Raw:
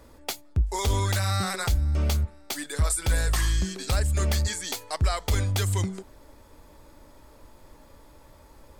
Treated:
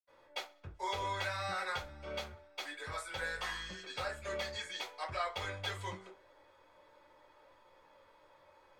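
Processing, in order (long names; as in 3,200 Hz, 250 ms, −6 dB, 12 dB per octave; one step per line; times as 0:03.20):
three-way crossover with the lows and the highs turned down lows −20 dB, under 510 Hz, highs −18 dB, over 4,300 Hz
feedback echo with a high-pass in the loop 64 ms, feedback 50%, level −23 dB
convolution reverb RT60 0.25 s, pre-delay 73 ms
level −1 dB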